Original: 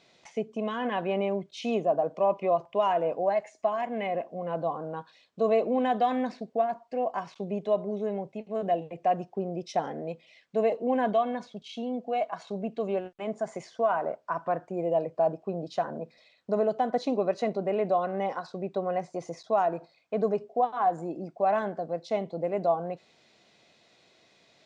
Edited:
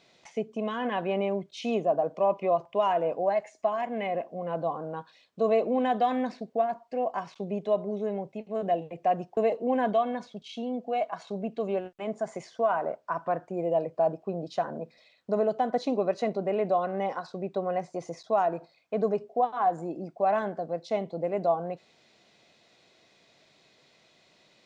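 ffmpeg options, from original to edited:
-filter_complex "[0:a]asplit=2[a][b];[a]atrim=end=9.372[c];[b]atrim=start=10.568[d];[c][d]acrossfade=d=0.004:c1=hsin:c2=hsin"

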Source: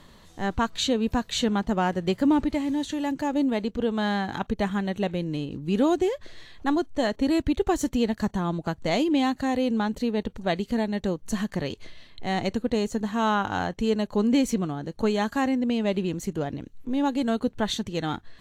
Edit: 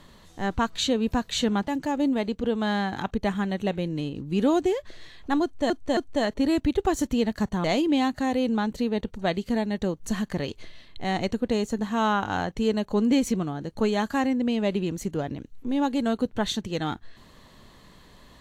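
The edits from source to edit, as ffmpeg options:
-filter_complex "[0:a]asplit=5[a][b][c][d][e];[a]atrim=end=1.682[f];[b]atrim=start=3.038:end=7.062[g];[c]atrim=start=6.788:end=7.062[h];[d]atrim=start=6.788:end=8.462[i];[e]atrim=start=8.858[j];[f][g]acrossfade=d=0.004:c1=hsin:c2=hsin[k];[k][h]acrossfade=d=0.004:c1=hsin:c2=hsin[l];[l][i]acrossfade=d=0.004:c1=hsin:c2=hsin[m];[m][j]acrossfade=d=0.004:c1=hsin:c2=hsin"

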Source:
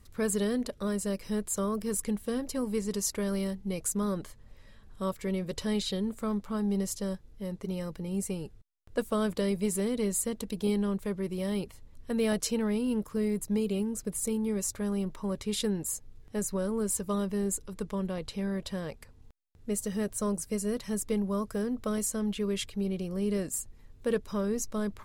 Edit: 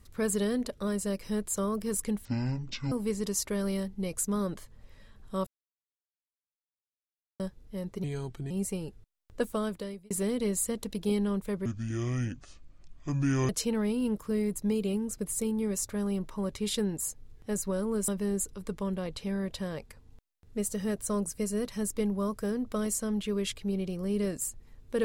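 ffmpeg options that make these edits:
-filter_complex "[0:a]asplit=11[a][b][c][d][e][f][g][h][i][j][k];[a]atrim=end=2.254[l];[b]atrim=start=2.25:end=2.59,asetpts=PTS-STARTPTS,asetrate=22491,aresample=44100[m];[c]atrim=start=2.586:end=5.14,asetpts=PTS-STARTPTS,afade=t=out:st=2.55:d=0.004:c=hsin[n];[d]atrim=start=5.14:end=7.07,asetpts=PTS-STARTPTS,volume=0[o];[e]atrim=start=7.07:end=7.714,asetpts=PTS-STARTPTS,afade=t=in:d=0.004:c=hsin[p];[f]atrim=start=7.71:end=8.08,asetpts=PTS-STARTPTS,asetrate=34839,aresample=44100,atrim=end_sample=20654,asetpts=PTS-STARTPTS[q];[g]atrim=start=8.076:end=9.68,asetpts=PTS-STARTPTS,afade=t=out:st=0.924:d=0.68[r];[h]atrim=start=9.68:end=11.234,asetpts=PTS-STARTPTS,afade=t=in:d=0.004:c=hsin[s];[i]atrim=start=11.23:end=12.35,asetpts=PTS-STARTPTS,asetrate=26901,aresample=44100,atrim=end_sample=80970,asetpts=PTS-STARTPTS[t];[j]atrim=start=12.346:end=16.942[u];[k]atrim=start=17.198[v];[l][m]acrossfade=d=0.004:c1=hsin:c2=hsin[w];[n][o][p]concat=n=3:v=0:a=1[x];[w][x]acrossfade=d=0.004:c1=hsin:c2=hsin[y];[y][q]acrossfade=d=0.004:c1=hsin:c2=hsin[z];[r][s]concat=n=2:v=0:a=1[aa];[z][aa]acrossfade=d=0.004:c1=hsin:c2=hsin[ab];[ab][t]acrossfade=d=0.004:c1=hsin:c2=hsin[ac];[ac][u]acrossfade=d=0.004:c1=hsin:c2=hsin[ad];[ad][v]acrossfade=d=0.004:c1=hsin:c2=hsin"

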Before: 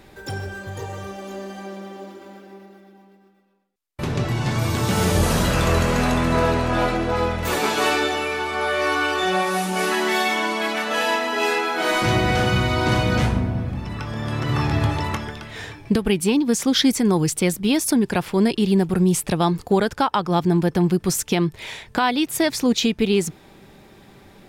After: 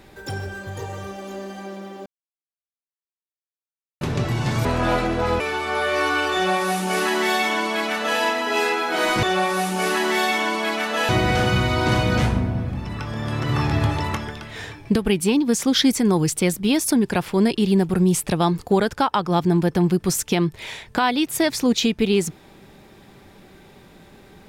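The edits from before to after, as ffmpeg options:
-filter_complex "[0:a]asplit=7[a][b][c][d][e][f][g];[a]atrim=end=2.06,asetpts=PTS-STARTPTS,afade=t=out:st=2.056:d=0.004:c=hsin[h];[b]atrim=start=2.06:end=4.01,asetpts=PTS-STARTPTS,volume=0[i];[c]atrim=start=4.01:end=4.652,asetpts=PTS-STARTPTS,afade=t=in:d=0.004:c=hsin[j];[d]atrim=start=6.548:end=7.302[k];[e]atrim=start=8.258:end=12.092[l];[f]atrim=start=9.198:end=11.062[m];[g]atrim=start=12.088[n];[h][i][j]concat=n=3:v=0:a=1[o];[o][k]acrossfade=d=0.004:c1=hsin:c2=hsin[p];[p][l]acrossfade=d=0.004:c1=hsin:c2=hsin[q];[q][m]acrossfade=d=0.004:c1=hsin:c2=hsin[r];[r][n]acrossfade=d=0.004:c1=hsin:c2=hsin"

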